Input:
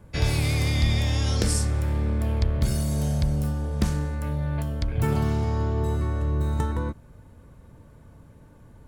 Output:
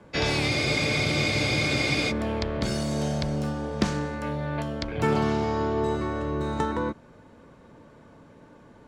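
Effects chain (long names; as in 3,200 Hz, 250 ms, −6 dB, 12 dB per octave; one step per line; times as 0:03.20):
three-way crossover with the lows and the highs turned down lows −18 dB, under 190 Hz, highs −23 dB, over 6,900 Hz
frozen spectrum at 0:00.52, 1.58 s
level +5.5 dB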